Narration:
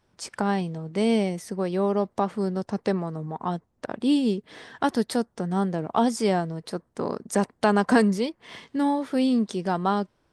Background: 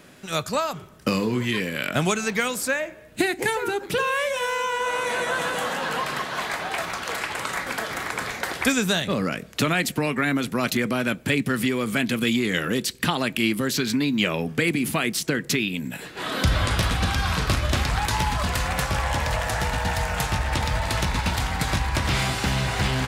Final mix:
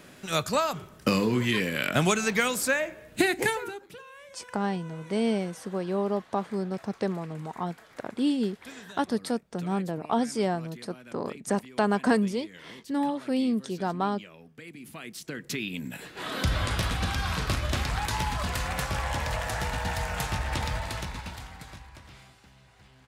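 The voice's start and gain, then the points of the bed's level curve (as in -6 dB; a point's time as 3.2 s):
4.15 s, -4.0 dB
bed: 3.45 s -1 dB
4.03 s -24.5 dB
14.56 s -24.5 dB
15.81 s -5.5 dB
20.68 s -5.5 dB
22.52 s -33 dB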